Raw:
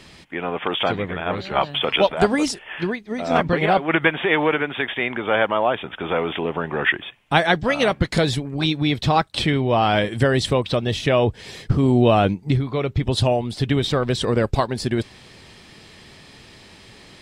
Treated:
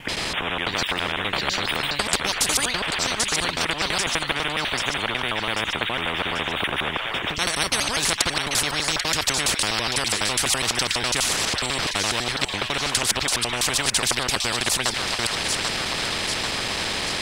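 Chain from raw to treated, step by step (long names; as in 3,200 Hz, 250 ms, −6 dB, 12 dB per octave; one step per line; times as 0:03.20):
slices reordered back to front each 83 ms, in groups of 4
delay with a high-pass on its return 789 ms, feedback 50%, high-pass 1,800 Hz, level −12 dB
every bin compressed towards the loudest bin 10 to 1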